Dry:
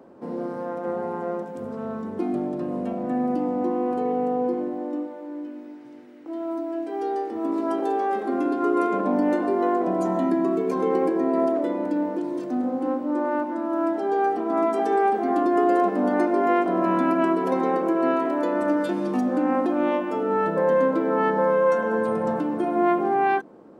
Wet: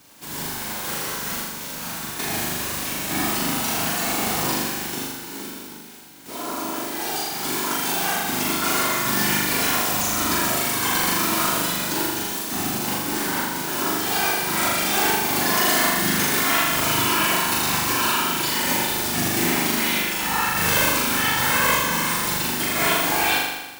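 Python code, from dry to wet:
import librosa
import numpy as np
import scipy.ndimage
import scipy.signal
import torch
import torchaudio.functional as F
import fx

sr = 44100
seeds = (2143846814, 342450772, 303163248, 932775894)

y = fx.envelope_flatten(x, sr, power=0.1)
y = fx.whisperise(y, sr, seeds[0])
y = fx.room_flutter(y, sr, wall_m=6.9, rt60_s=1.1)
y = F.gain(torch.from_numpy(y), -3.5).numpy()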